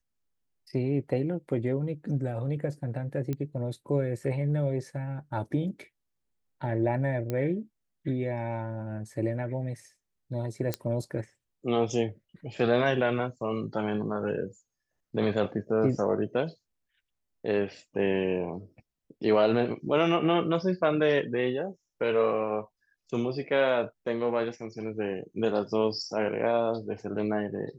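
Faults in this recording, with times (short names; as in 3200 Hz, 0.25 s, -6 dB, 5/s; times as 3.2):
3.33 pop -20 dBFS
7.3 pop -18 dBFS
10.74 pop -13 dBFS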